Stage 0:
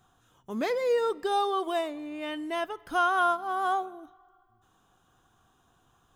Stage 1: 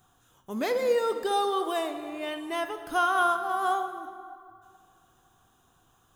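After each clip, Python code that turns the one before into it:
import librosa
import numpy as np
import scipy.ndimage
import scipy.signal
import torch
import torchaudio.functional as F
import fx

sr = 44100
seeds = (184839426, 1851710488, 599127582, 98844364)

y = fx.high_shelf(x, sr, hz=7900.0, db=9.5)
y = fx.rev_plate(y, sr, seeds[0], rt60_s=2.3, hf_ratio=0.6, predelay_ms=0, drr_db=7.5)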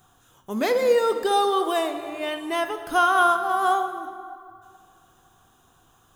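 y = fx.hum_notches(x, sr, base_hz=60, count=5)
y = y * 10.0 ** (5.5 / 20.0)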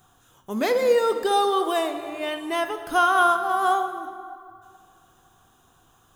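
y = x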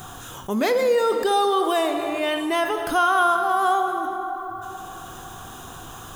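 y = fx.env_flatten(x, sr, amount_pct=50)
y = y * 10.0 ** (-1.5 / 20.0)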